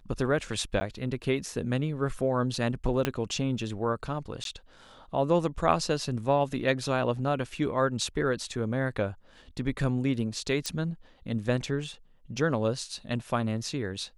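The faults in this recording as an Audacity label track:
0.800000	0.810000	dropout 10 ms
3.050000	3.050000	pop -11 dBFS
4.440000	4.450000	dropout 12 ms
10.660000	10.660000	pop -16 dBFS

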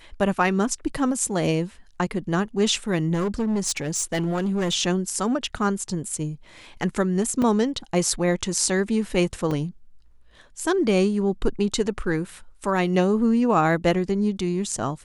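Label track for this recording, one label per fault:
3.130000	4.740000	clipped -20 dBFS
7.420000	7.420000	dropout 3.6 ms
9.510000	9.510000	dropout 4.1 ms

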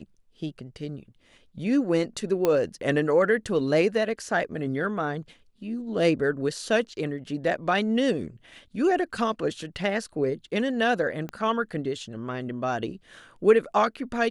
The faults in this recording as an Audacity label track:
2.450000	2.450000	pop -10 dBFS
11.290000	11.290000	pop -22 dBFS

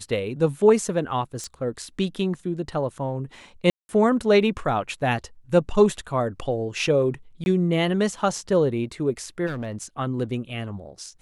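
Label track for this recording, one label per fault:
1.440000	1.440000	pop -20 dBFS
3.700000	3.890000	dropout 190 ms
7.440000	7.460000	dropout 21 ms
9.460000	9.850000	clipped -26.5 dBFS

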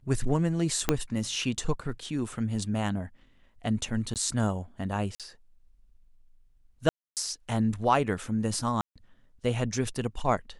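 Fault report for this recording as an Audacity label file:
0.890000	0.890000	pop -7 dBFS
4.140000	4.160000	dropout 18 ms
5.150000	5.200000	dropout 47 ms
6.890000	7.170000	dropout 278 ms
8.810000	8.960000	dropout 146 ms

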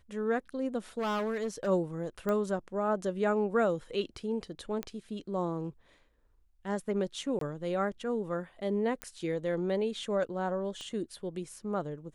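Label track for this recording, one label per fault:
0.980000	1.680000	clipped -28.5 dBFS
2.290000	2.290000	pop -20 dBFS
4.830000	4.830000	pop -20 dBFS
7.390000	7.410000	dropout 23 ms
9.020000	9.020000	pop -20 dBFS
10.810000	10.810000	pop -30 dBFS

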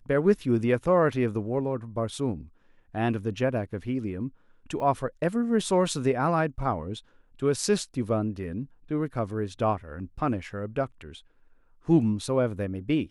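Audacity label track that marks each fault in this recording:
4.800000	4.800000	dropout 2.1 ms

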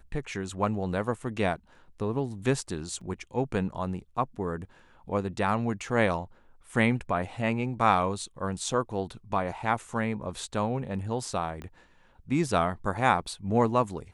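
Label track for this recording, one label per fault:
3.010000	3.010000	dropout 3.9 ms
11.620000	11.620000	pop -26 dBFS

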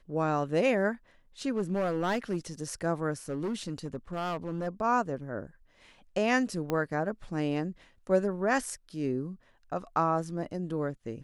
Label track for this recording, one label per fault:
1.560000	2.370000	clipped -24.5 dBFS
3.290000	4.680000	clipped -28.5 dBFS
6.700000	6.700000	pop -17 dBFS

